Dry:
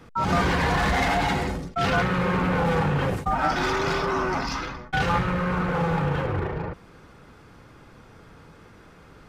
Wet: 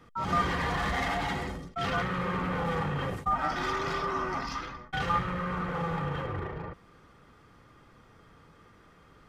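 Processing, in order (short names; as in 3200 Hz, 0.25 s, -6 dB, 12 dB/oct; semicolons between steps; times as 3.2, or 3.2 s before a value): small resonant body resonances 1200/1900/3200 Hz, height 10 dB, ringing for 45 ms; gain -8.5 dB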